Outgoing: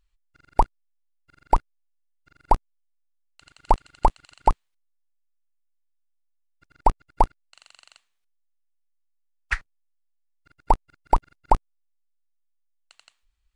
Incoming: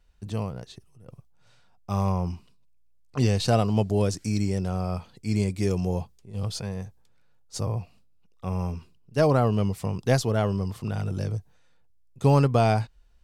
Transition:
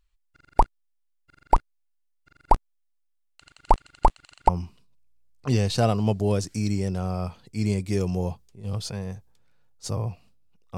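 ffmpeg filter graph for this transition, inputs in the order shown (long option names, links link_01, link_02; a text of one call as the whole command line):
ffmpeg -i cue0.wav -i cue1.wav -filter_complex "[0:a]apad=whole_dur=10.77,atrim=end=10.77,atrim=end=4.492[link_01];[1:a]atrim=start=2.188:end=8.47[link_02];[link_01][link_02]acrossfade=duration=0.004:curve1=hsin:curve2=hsin" out.wav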